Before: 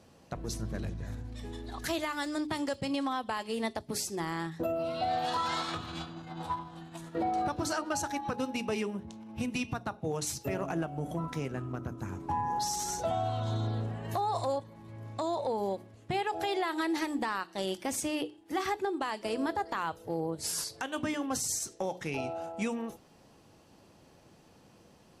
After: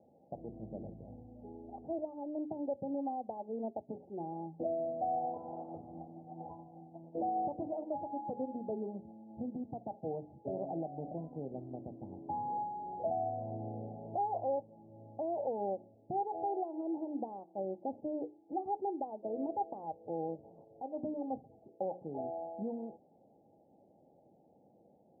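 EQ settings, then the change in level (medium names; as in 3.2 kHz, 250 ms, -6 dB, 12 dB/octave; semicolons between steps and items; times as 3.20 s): high-pass 440 Hz 6 dB/octave; rippled Chebyshev low-pass 830 Hz, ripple 3 dB; +1.0 dB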